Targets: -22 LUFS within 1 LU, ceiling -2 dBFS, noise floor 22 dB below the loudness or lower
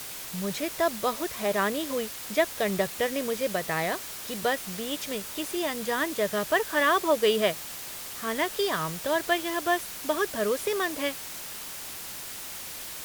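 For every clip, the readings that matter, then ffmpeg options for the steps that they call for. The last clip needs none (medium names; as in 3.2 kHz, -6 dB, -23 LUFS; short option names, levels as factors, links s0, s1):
noise floor -39 dBFS; noise floor target -51 dBFS; loudness -28.5 LUFS; peak level -10.0 dBFS; loudness target -22.0 LUFS
-> -af "afftdn=nr=12:nf=-39"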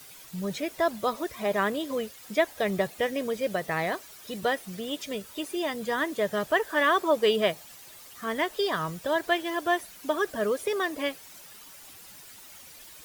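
noise floor -49 dBFS; noise floor target -51 dBFS
-> -af "afftdn=nr=6:nf=-49"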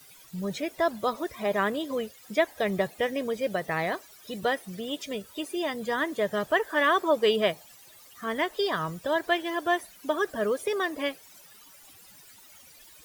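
noise floor -53 dBFS; loudness -28.5 LUFS; peak level -10.5 dBFS; loudness target -22.0 LUFS
-> -af "volume=2.11"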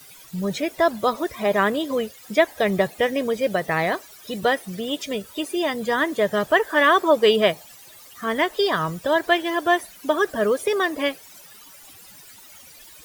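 loudness -22.0 LUFS; peak level -4.0 dBFS; noise floor -46 dBFS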